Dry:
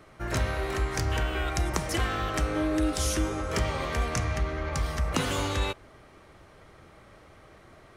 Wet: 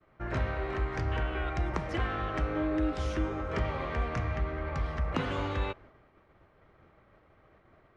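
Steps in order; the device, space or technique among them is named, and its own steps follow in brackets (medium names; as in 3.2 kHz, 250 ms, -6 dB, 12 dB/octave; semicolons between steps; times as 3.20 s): hearing-loss simulation (low-pass 2.4 kHz 12 dB/octave; expander -47 dBFS); trim -3 dB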